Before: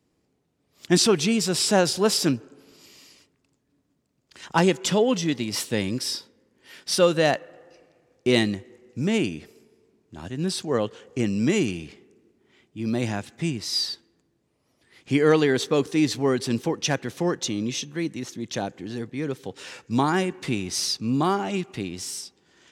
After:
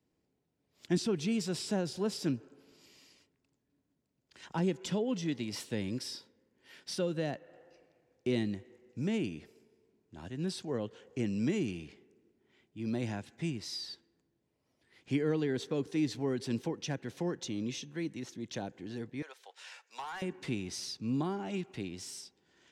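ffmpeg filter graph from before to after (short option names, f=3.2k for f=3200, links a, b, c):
-filter_complex "[0:a]asettb=1/sr,asplit=3[a][b][c];[a]atrim=end=19.224[d];[b]atrim=start=19.22:end=20.22,asetpts=PTS-STARTPTS,afade=t=in:d=0.004:c=qsin,afade=t=out:st=0.996:d=0.004:c=qsin,highpass=f=710:w=0.5412,highpass=f=710:w=1.3066,asoftclip=type=hard:threshold=-24dB[e];[c]atrim=start=20.216[f];[d][e]acrossfade=d=0.004:c1=hsin:c2=qsin[g];[g][f]acrossfade=d=0.004:c1=qsin:c2=hsin,highshelf=f=7.8k:g=-7,bandreject=f=1.2k:w=11,acrossover=split=370[h][i];[i]acompressor=threshold=-30dB:ratio=4[j];[h][j]amix=inputs=2:normalize=0,volume=-8.5dB"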